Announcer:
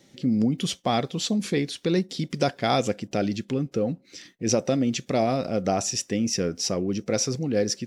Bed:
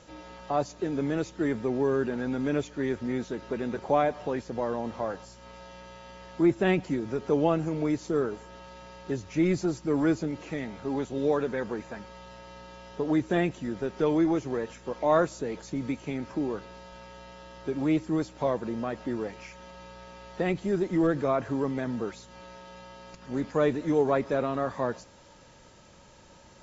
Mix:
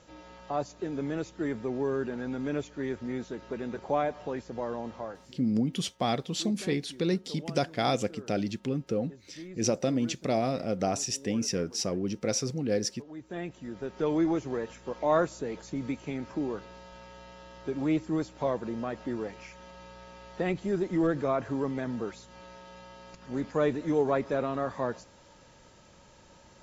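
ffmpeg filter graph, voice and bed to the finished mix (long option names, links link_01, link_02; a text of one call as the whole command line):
ffmpeg -i stem1.wav -i stem2.wav -filter_complex "[0:a]adelay=5150,volume=-4.5dB[link_01];[1:a]volume=13.5dB,afade=type=out:start_time=4.83:duration=0.67:silence=0.16788,afade=type=in:start_time=13.13:duration=1.1:silence=0.133352[link_02];[link_01][link_02]amix=inputs=2:normalize=0" out.wav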